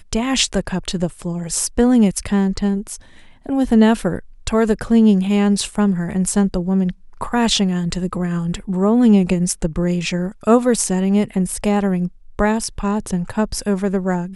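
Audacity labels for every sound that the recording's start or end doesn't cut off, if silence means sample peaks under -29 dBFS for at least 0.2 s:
3.460000	4.190000	sound
4.470000	6.920000	sound
7.210000	12.080000	sound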